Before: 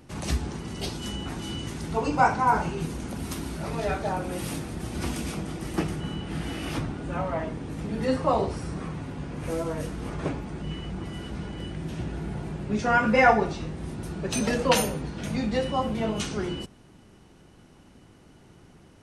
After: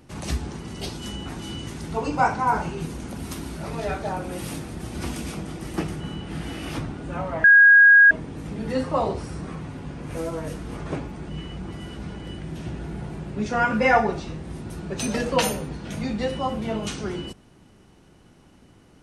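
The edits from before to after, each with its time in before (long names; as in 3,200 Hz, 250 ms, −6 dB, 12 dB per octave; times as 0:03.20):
0:07.44: insert tone 1,640 Hz −8.5 dBFS 0.67 s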